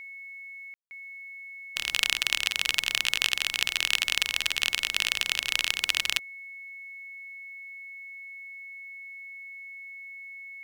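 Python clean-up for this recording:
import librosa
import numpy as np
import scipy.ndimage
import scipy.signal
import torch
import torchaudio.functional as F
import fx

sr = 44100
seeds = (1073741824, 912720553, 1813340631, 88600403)

y = fx.notch(x, sr, hz=2200.0, q=30.0)
y = fx.fix_ambience(y, sr, seeds[0], print_start_s=7.66, print_end_s=8.16, start_s=0.74, end_s=0.91)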